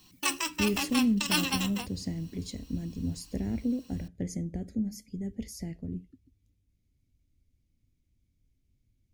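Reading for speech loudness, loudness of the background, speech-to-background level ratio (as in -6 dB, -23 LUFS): -33.5 LUFS, -30.5 LUFS, -3.0 dB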